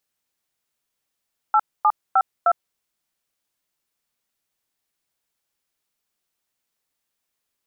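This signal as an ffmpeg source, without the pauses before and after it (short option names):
-f lavfi -i "aevalsrc='0.168*clip(min(mod(t,0.307),0.056-mod(t,0.307))/0.002,0,1)*(eq(floor(t/0.307),0)*(sin(2*PI*852*mod(t,0.307))+sin(2*PI*1336*mod(t,0.307)))+eq(floor(t/0.307),1)*(sin(2*PI*852*mod(t,0.307))+sin(2*PI*1209*mod(t,0.307)))+eq(floor(t/0.307),2)*(sin(2*PI*770*mod(t,0.307))+sin(2*PI*1336*mod(t,0.307)))+eq(floor(t/0.307),3)*(sin(2*PI*697*mod(t,0.307))+sin(2*PI*1336*mod(t,0.307))))':d=1.228:s=44100"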